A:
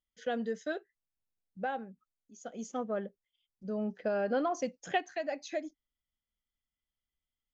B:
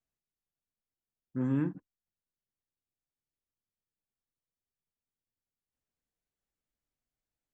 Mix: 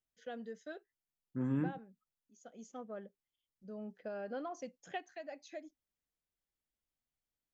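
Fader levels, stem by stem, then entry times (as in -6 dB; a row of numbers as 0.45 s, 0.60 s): -11.0 dB, -4.5 dB; 0.00 s, 0.00 s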